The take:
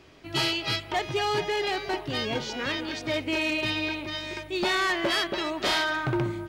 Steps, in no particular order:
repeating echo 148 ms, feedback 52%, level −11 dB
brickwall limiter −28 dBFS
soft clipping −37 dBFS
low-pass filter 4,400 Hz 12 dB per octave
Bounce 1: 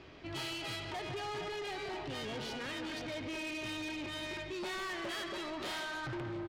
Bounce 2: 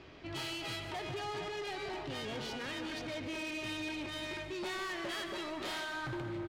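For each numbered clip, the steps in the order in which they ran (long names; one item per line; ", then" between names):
low-pass filter, then brickwall limiter, then repeating echo, then soft clipping
low-pass filter, then brickwall limiter, then soft clipping, then repeating echo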